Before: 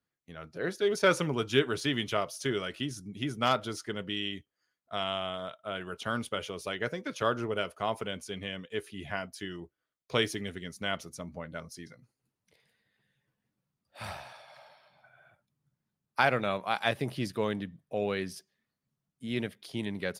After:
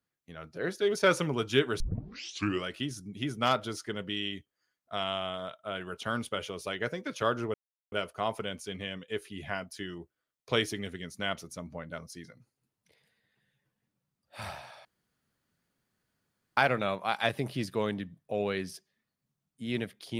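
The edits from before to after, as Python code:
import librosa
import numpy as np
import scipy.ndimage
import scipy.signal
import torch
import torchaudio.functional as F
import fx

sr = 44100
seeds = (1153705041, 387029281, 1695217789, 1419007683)

y = fx.edit(x, sr, fx.tape_start(start_s=1.8, length_s=0.85),
    fx.insert_silence(at_s=7.54, length_s=0.38),
    fx.room_tone_fill(start_s=14.47, length_s=1.72), tone=tone)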